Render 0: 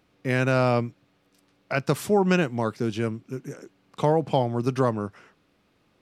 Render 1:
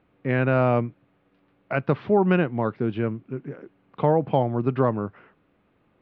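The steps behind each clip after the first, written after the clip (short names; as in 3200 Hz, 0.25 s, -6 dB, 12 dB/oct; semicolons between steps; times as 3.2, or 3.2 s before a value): Bessel low-pass 2000 Hz, order 8; gain +1.5 dB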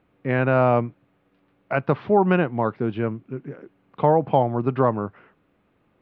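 dynamic EQ 870 Hz, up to +5 dB, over -35 dBFS, Q 1.1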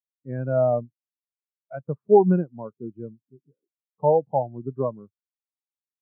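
spectral expander 2.5:1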